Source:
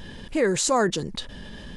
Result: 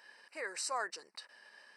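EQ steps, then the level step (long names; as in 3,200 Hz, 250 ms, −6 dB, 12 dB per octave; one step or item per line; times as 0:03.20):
moving average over 13 samples
high-pass filter 590 Hz 12 dB per octave
first difference
+6.5 dB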